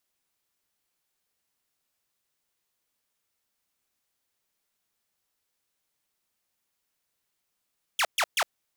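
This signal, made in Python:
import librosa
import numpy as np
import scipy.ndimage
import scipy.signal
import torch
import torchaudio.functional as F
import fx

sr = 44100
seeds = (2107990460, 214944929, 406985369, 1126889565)

y = fx.laser_zaps(sr, level_db=-19.0, start_hz=3600.0, end_hz=560.0, length_s=0.06, wave='saw', shots=3, gap_s=0.13)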